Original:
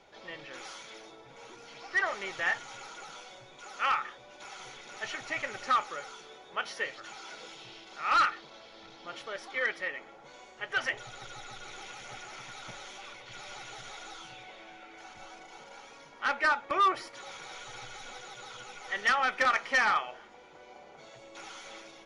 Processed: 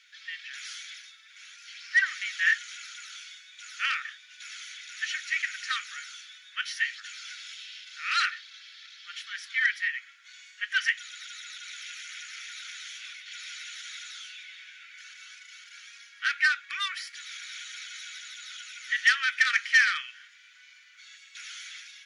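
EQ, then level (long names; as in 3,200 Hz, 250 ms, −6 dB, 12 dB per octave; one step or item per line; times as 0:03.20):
elliptic high-pass filter 1,600 Hz, stop band 50 dB
+7.0 dB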